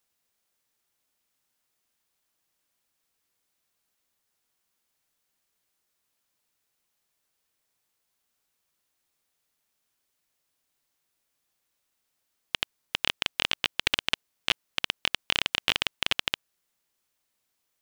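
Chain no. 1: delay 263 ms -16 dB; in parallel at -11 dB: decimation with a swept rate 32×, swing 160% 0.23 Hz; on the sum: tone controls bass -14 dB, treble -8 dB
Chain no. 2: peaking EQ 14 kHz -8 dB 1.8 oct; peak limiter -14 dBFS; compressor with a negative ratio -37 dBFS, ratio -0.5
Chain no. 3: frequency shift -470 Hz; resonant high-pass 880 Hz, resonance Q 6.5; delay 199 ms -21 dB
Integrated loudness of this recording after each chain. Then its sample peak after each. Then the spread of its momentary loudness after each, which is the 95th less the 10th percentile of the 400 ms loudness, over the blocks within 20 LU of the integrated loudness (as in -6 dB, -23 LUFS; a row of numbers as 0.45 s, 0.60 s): -30.0 LUFS, -39.0 LUFS, -26.5 LUFS; -5.5 dBFS, -14.0 dBFS, -3.5 dBFS; 6 LU, 7 LU, 7 LU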